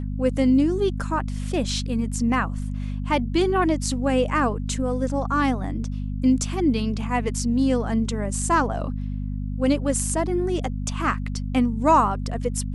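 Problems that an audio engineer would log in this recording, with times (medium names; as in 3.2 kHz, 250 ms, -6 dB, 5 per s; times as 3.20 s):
hum 50 Hz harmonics 5 -28 dBFS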